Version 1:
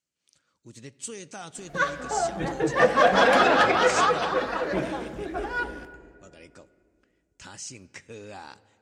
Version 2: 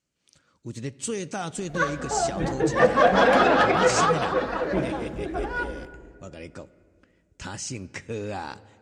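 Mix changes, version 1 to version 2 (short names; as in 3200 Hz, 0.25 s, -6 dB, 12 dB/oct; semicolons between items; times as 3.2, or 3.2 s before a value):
speech +8.0 dB; master: add tilt -1.5 dB/oct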